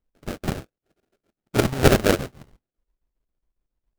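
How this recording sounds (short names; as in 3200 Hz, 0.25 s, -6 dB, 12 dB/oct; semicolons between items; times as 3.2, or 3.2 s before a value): chopped level 7.3 Hz, depth 60%, duty 70%; phasing stages 12, 1.1 Hz, lowest notch 570–2700 Hz; aliases and images of a low sample rate 1000 Hz, jitter 20%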